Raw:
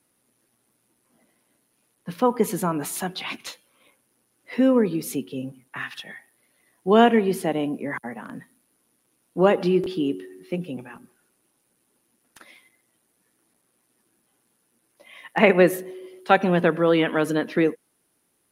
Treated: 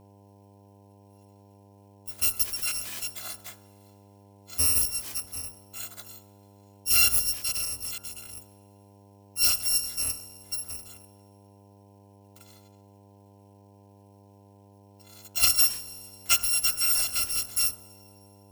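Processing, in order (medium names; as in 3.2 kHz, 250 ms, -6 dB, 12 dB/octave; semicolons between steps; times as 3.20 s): bit-reversed sample order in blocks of 256 samples; de-hum 58.11 Hz, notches 30; on a send at -24 dB: reverberation RT60 2.7 s, pre-delay 108 ms; on the sum: mains buzz 100 Hz, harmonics 10, -49 dBFS -4 dB/octave; trim -5.5 dB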